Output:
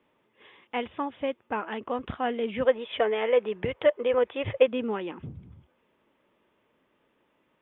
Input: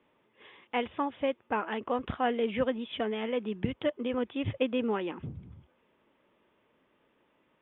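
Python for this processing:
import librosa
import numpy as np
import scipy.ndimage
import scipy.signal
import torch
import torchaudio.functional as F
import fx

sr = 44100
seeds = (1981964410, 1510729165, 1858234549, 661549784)

y = fx.graphic_eq(x, sr, hz=(250, 500, 1000, 2000), db=(-9, 11, 5, 7), at=(2.65, 4.68))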